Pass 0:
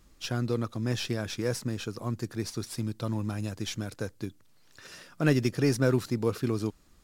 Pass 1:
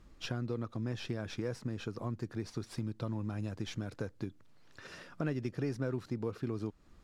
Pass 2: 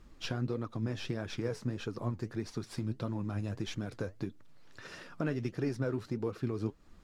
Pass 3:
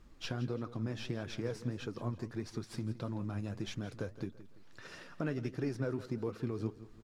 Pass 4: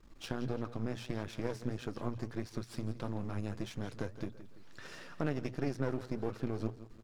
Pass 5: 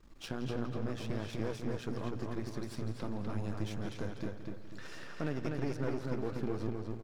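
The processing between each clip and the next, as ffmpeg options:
-af "aemphasis=mode=reproduction:type=75kf,acompressor=threshold=0.0141:ratio=3,volume=1.19"
-af "flanger=delay=2.1:depth=9.9:regen=62:speed=1.6:shape=triangular,volume=2"
-af "aecho=1:1:168|336|504:0.168|0.0638|0.0242,volume=0.75"
-af "aeval=exprs='if(lt(val(0),0),0.251*val(0),val(0))':c=same,bandreject=f=60:t=h:w=6,bandreject=f=120:t=h:w=6,volume=1.5"
-filter_complex "[0:a]asoftclip=type=tanh:threshold=0.0668,asplit=2[s0][s1];[s1]adelay=247,lowpass=f=4600:p=1,volume=0.708,asplit=2[s2][s3];[s3]adelay=247,lowpass=f=4600:p=1,volume=0.37,asplit=2[s4][s5];[s5]adelay=247,lowpass=f=4600:p=1,volume=0.37,asplit=2[s6][s7];[s7]adelay=247,lowpass=f=4600:p=1,volume=0.37,asplit=2[s8][s9];[s9]adelay=247,lowpass=f=4600:p=1,volume=0.37[s10];[s0][s2][s4][s6][s8][s10]amix=inputs=6:normalize=0"

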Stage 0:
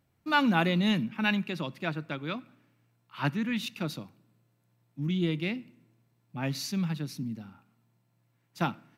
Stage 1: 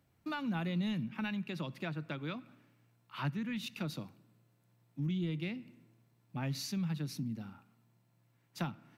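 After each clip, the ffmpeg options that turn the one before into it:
-filter_complex "[0:a]acrossover=split=140[s0][s1];[s1]acompressor=threshold=0.0126:ratio=6[s2];[s0][s2]amix=inputs=2:normalize=0"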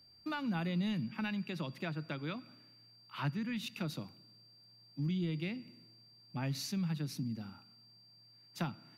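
-af "aeval=exprs='val(0)+0.001*sin(2*PI*4700*n/s)':c=same"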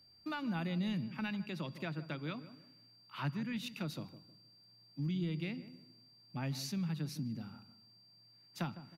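-filter_complex "[0:a]asplit=2[s0][s1];[s1]adelay=156,lowpass=f=920:p=1,volume=0.237,asplit=2[s2][s3];[s3]adelay=156,lowpass=f=920:p=1,volume=0.32,asplit=2[s4][s5];[s5]adelay=156,lowpass=f=920:p=1,volume=0.32[s6];[s0][s2][s4][s6]amix=inputs=4:normalize=0,volume=0.841"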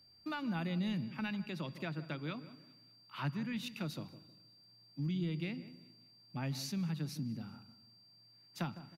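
-af "aecho=1:1:197|394|591:0.0631|0.0259|0.0106"

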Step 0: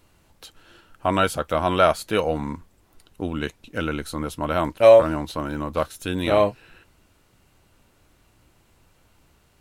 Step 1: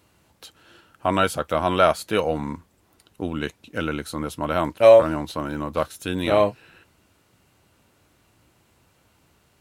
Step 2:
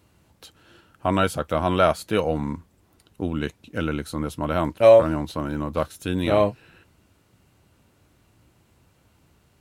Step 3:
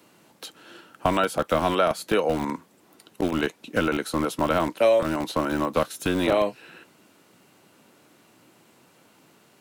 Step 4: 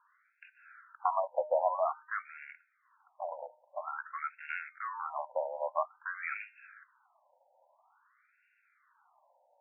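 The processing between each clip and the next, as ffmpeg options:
-af "highpass=76"
-af "lowshelf=f=300:g=7,volume=0.75"
-filter_complex "[0:a]acrossover=split=340|1900[s0][s1][s2];[s0]acompressor=threshold=0.0158:ratio=4[s3];[s1]acompressor=threshold=0.0398:ratio=4[s4];[s2]acompressor=threshold=0.01:ratio=4[s5];[s3][s4][s5]amix=inputs=3:normalize=0,acrossover=split=170|2500[s6][s7][s8];[s6]acrusher=bits=5:mix=0:aa=0.000001[s9];[s9][s7][s8]amix=inputs=3:normalize=0,volume=2.24"
-af "adynamicsmooth=sensitivity=5.5:basefreq=3300,bandreject=f=305.2:t=h:w=4,bandreject=f=610.4:t=h:w=4,bandreject=f=915.6:t=h:w=4,bandreject=f=1220.8:t=h:w=4,bandreject=f=1526:t=h:w=4,bandreject=f=1831.2:t=h:w=4,bandreject=f=2136.4:t=h:w=4,bandreject=f=2441.6:t=h:w=4,bandreject=f=2746.8:t=h:w=4,bandreject=f=3052:t=h:w=4,bandreject=f=3357.2:t=h:w=4,bandreject=f=3662.4:t=h:w=4,bandreject=f=3967.6:t=h:w=4,bandreject=f=4272.8:t=h:w=4,bandreject=f=4578:t=h:w=4,bandreject=f=4883.2:t=h:w=4,bandreject=f=5188.4:t=h:w=4,bandreject=f=5493.6:t=h:w=4,bandreject=f=5798.8:t=h:w=4,bandreject=f=6104:t=h:w=4,bandreject=f=6409.2:t=h:w=4,bandreject=f=6714.4:t=h:w=4,bandreject=f=7019.6:t=h:w=4,bandreject=f=7324.8:t=h:w=4,bandreject=f=7630:t=h:w=4,bandreject=f=7935.2:t=h:w=4,bandreject=f=8240.4:t=h:w=4,bandreject=f=8545.6:t=h:w=4,bandreject=f=8850.8:t=h:w=4,bandreject=f=9156:t=h:w=4,afftfilt=real='re*between(b*sr/1024,670*pow(2000/670,0.5+0.5*sin(2*PI*0.5*pts/sr))/1.41,670*pow(2000/670,0.5+0.5*sin(2*PI*0.5*pts/sr))*1.41)':imag='im*between(b*sr/1024,670*pow(2000/670,0.5+0.5*sin(2*PI*0.5*pts/sr))/1.41,670*pow(2000/670,0.5+0.5*sin(2*PI*0.5*pts/sr))*1.41)':win_size=1024:overlap=0.75,volume=0.708"

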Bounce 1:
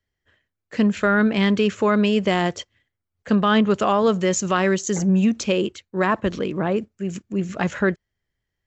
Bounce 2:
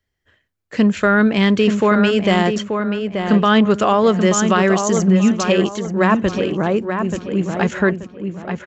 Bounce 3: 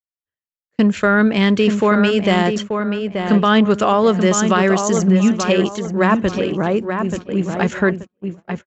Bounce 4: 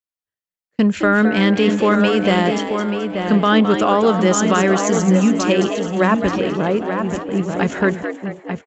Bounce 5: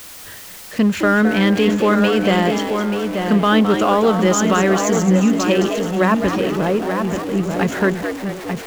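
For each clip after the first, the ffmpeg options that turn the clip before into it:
-filter_complex "[0:a]asplit=2[s0][s1];[s1]adelay=882,lowpass=f=2600:p=1,volume=0.501,asplit=2[s2][s3];[s3]adelay=882,lowpass=f=2600:p=1,volume=0.32,asplit=2[s4][s5];[s5]adelay=882,lowpass=f=2600:p=1,volume=0.32,asplit=2[s6][s7];[s7]adelay=882,lowpass=f=2600:p=1,volume=0.32[s8];[s0][s2][s4][s6][s8]amix=inputs=5:normalize=0,volume=1.58"
-af "agate=range=0.0141:threshold=0.0501:ratio=16:detection=peak"
-filter_complex "[0:a]asplit=6[s0][s1][s2][s3][s4][s5];[s1]adelay=214,afreqshift=95,volume=0.355[s6];[s2]adelay=428,afreqshift=190,volume=0.153[s7];[s3]adelay=642,afreqshift=285,volume=0.0653[s8];[s4]adelay=856,afreqshift=380,volume=0.0282[s9];[s5]adelay=1070,afreqshift=475,volume=0.0122[s10];[s0][s6][s7][s8][s9][s10]amix=inputs=6:normalize=0,volume=0.891"
-af "aeval=exprs='val(0)+0.5*0.0501*sgn(val(0))':c=same,volume=0.891"

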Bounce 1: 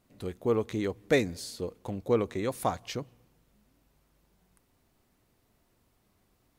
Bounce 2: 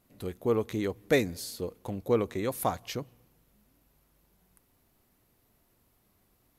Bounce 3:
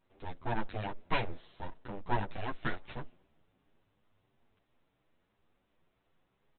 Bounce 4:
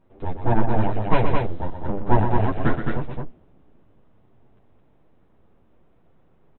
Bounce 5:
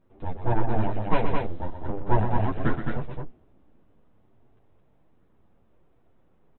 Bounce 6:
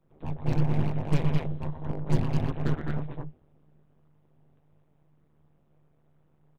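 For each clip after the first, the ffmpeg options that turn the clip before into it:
-af "equalizer=f=12000:w=3:g=12.5"
-filter_complex "[0:a]aresample=8000,aeval=exprs='abs(val(0))':c=same,aresample=44100,asplit=2[s0][s1];[s1]adelay=9.1,afreqshift=2.9[s2];[s0][s2]amix=inputs=2:normalize=1"
-af "tiltshelf=f=1500:g=9.5,aecho=1:1:122.4|215.7:0.398|0.631,volume=2.11"
-af "flanger=delay=0.5:depth=3.9:regen=-69:speed=0.38:shape=triangular"
-filter_complex "[0:a]acrossover=split=130|590|1600[s0][s1][s2][s3];[s2]aeval=exprs='0.015*(abs(mod(val(0)/0.015+3,4)-2)-1)':c=same[s4];[s0][s1][s4][s3]amix=inputs=4:normalize=0,tremolo=f=150:d=1"

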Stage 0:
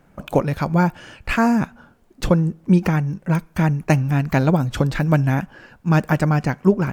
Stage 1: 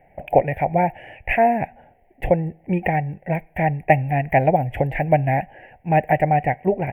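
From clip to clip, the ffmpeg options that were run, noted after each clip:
-af "firequalizer=gain_entry='entry(120,0);entry(200,-8);entry(760,14);entry(1200,-28);entry(1900,11);entry(2700,1);entry(4000,-30);entry(6500,-29);entry(11000,-6)':delay=0.05:min_phase=1,volume=0.794"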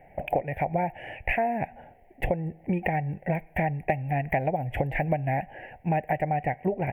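-af "acompressor=threshold=0.0562:ratio=6,volume=1.19"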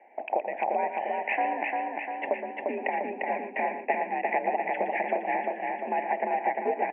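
-filter_complex "[0:a]asplit=2[s0][s1];[s1]aecho=0:1:117:0.316[s2];[s0][s2]amix=inputs=2:normalize=0,highpass=f=260:t=q:w=0.5412,highpass=f=260:t=q:w=1.307,lowpass=f=2700:t=q:w=0.5176,lowpass=f=2700:t=q:w=0.7071,lowpass=f=2700:t=q:w=1.932,afreqshift=55,asplit=2[s3][s4];[s4]aecho=0:1:349|698|1047|1396|1745|2094|2443|2792:0.708|0.411|0.238|0.138|0.0801|0.0465|0.027|0.0156[s5];[s3][s5]amix=inputs=2:normalize=0,volume=0.841"

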